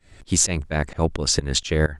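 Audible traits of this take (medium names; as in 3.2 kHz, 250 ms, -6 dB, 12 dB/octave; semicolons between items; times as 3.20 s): tremolo saw up 4.3 Hz, depth 95%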